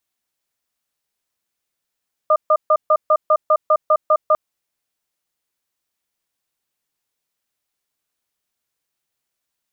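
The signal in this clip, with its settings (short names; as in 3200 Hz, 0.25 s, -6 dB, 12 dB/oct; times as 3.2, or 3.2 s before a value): cadence 619 Hz, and 1210 Hz, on 0.06 s, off 0.14 s, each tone -13 dBFS 2.05 s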